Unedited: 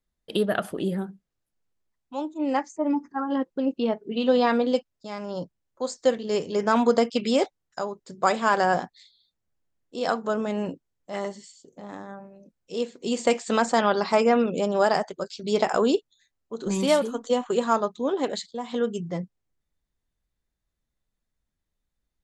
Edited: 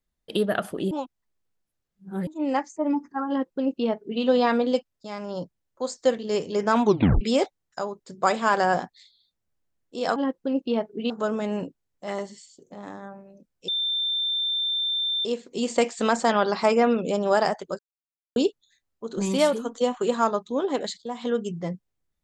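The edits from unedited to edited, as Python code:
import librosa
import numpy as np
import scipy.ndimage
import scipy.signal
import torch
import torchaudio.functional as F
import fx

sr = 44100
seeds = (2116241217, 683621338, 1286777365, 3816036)

y = fx.edit(x, sr, fx.reverse_span(start_s=0.91, length_s=1.36),
    fx.duplicate(start_s=3.28, length_s=0.94, to_s=10.16),
    fx.tape_stop(start_s=6.84, length_s=0.37),
    fx.insert_tone(at_s=12.74, length_s=1.57, hz=3570.0, db=-23.0),
    fx.silence(start_s=15.28, length_s=0.57), tone=tone)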